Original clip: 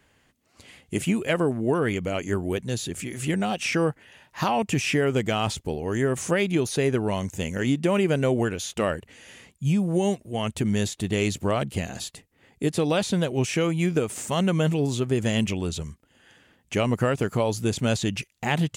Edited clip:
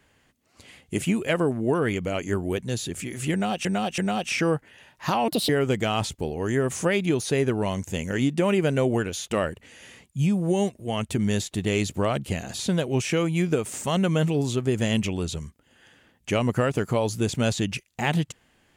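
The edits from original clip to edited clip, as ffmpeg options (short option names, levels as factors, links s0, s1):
-filter_complex "[0:a]asplit=6[s0][s1][s2][s3][s4][s5];[s0]atrim=end=3.652[s6];[s1]atrim=start=3.318:end=3.652[s7];[s2]atrim=start=3.318:end=4.624[s8];[s3]atrim=start=4.62:end=4.95,asetpts=PTS-STARTPTS,asetrate=69237,aresample=44100,atrim=end_sample=9269,asetpts=PTS-STARTPTS[s9];[s4]atrim=start=4.946:end=12.052[s10];[s5]atrim=start=13.028[s11];[s6][s7]acrossfade=d=0.004:c1=hsin:c2=hsin[s12];[s12][s8]acrossfade=d=0.004:c1=hsin:c2=hsin[s13];[s13][s9]acrossfade=d=0.004:c1=hsin:c2=hsin[s14];[s14][s10]acrossfade=d=0.004:c1=hsin:c2=hsin[s15];[s15][s11]acrossfade=d=0.004:c1=hsin:c2=hsin"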